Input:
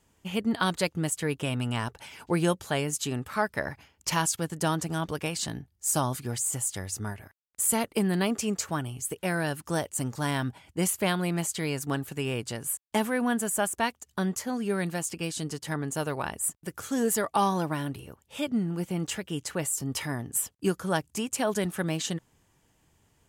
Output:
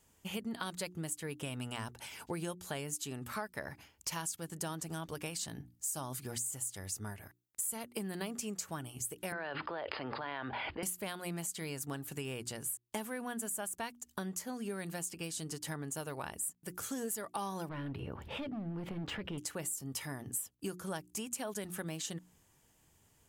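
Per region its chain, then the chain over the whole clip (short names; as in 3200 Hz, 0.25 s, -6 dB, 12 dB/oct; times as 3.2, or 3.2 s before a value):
9.32–10.83 brick-wall FIR low-pass 5100 Hz + three-band isolator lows -20 dB, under 390 Hz, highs -23 dB, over 3100 Hz + fast leveller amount 100%
17.69–19.38 hard clip -30 dBFS + air absorption 390 m + fast leveller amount 70%
whole clip: high shelf 6900 Hz +9 dB; notches 60/120/180/240/300/360 Hz; compressor 4:1, threshold -34 dBFS; gain -3.5 dB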